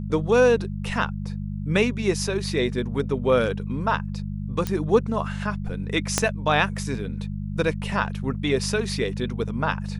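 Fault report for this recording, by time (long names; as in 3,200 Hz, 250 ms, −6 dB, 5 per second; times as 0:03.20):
mains hum 50 Hz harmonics 4 −30 dBFS
0:04.67: click −12 dBFS
0:06.18: click −4 dBFS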